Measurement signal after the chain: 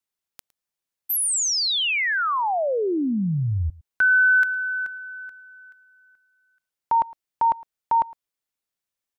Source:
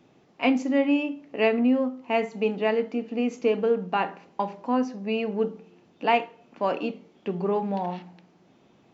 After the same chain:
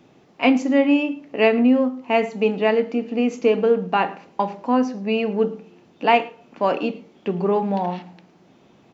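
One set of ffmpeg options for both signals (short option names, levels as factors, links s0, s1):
-af "aecho=1:1:110:0.0794,volume=1.88"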